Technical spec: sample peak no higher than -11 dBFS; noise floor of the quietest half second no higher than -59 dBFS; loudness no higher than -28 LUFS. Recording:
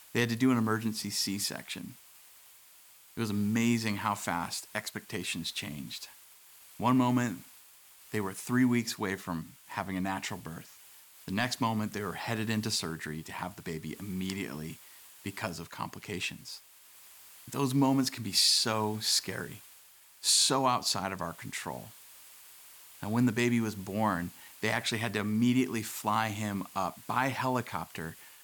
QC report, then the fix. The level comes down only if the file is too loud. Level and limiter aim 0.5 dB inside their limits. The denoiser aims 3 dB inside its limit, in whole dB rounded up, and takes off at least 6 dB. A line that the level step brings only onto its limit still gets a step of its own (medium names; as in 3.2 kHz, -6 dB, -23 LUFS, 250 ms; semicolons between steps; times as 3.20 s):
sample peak -14.0 dBFS: pass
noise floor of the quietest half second -57 dBFS: fail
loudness -31.0 LUFS: pass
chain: noise reduction 6 dB, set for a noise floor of -57 dBFS